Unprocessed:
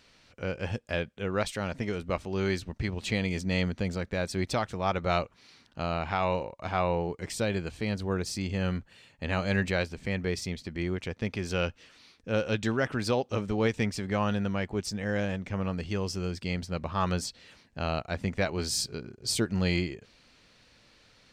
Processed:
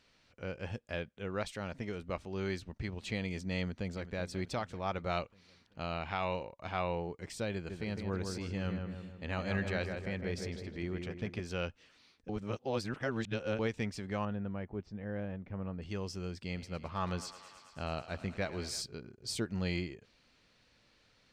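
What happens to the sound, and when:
3.59–4.10 s: echo throw 380 ms, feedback 55%, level -12 dB
5.17–7.00 s: dynamic bell 3 kHz, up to +5 dB, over -48 dBFS, Q 1.1
7.54–11.40 s: filtered feedback delay 157 ms, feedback 54%, level -4.5 dB
12.29–13.59 s: reverse
14.25–15.82 s: tape spacing loss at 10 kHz 40 dB
16.44–18.82 s: thinning echo 109 ms, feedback 83%, level -14 dB
whole clip: treble shelf 8.4 kHz -5.5 dB; trim -7.5 dB

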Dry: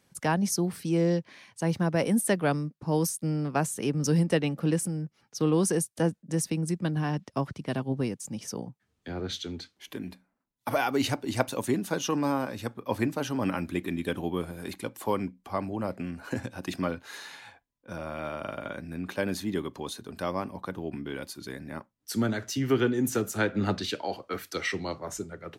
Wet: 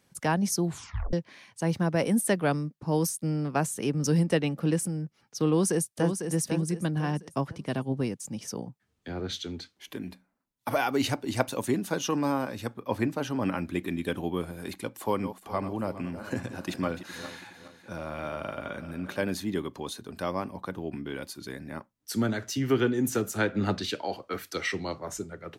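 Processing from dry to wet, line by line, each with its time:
0.64 s: tape stop 0.49 s
5.49–6.16 s: echo throw 500 ms, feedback 35%, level -7 dB
12.86–13.74 s: treble shelf 4.6 kHz -5 dB
14.99–19.30 s: backward echo that repeats 207 ms, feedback 60%, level -11.5 dB

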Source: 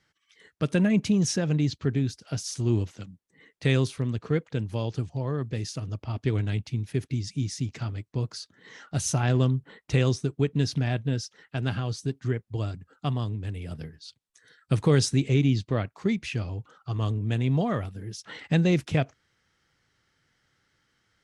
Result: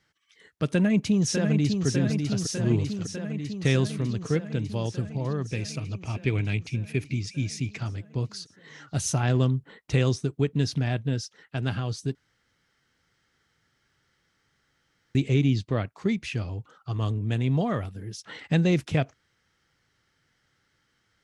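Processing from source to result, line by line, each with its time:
0.69–1.86 s: echo throw 600 ms, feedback 75%, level -5 dB
5.51–7.78 s: peaking EQ 2.4 kHz +13.5 dB 0.27 oct
12.15–15.15 s: room tone

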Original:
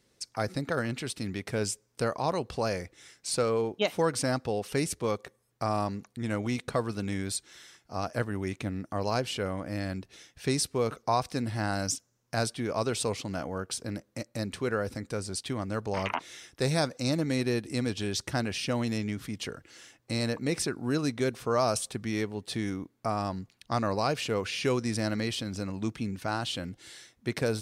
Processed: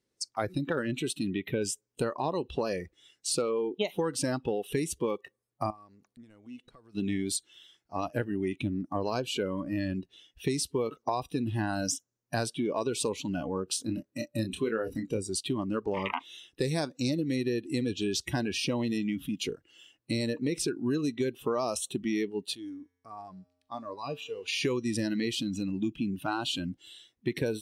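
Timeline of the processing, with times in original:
1.29–1.62 s: time-frequency box 4.3–11 kHz -12 dB
5.70–6.95 s: compression 8:1, threshold -41 dBFS
13.65–15.18 s: doubling 27 ms -6.5 dB
22.55–24.48 s: feedback comb 89 Hz, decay 1.2 s, harmonics odd, mix 70%
whole clip: spectral noise reduction 18 dB; peaking EQ 340 Hz +5 dB 0.89 oct; compression, threshold -30 dBFS; trim +3.5 dB

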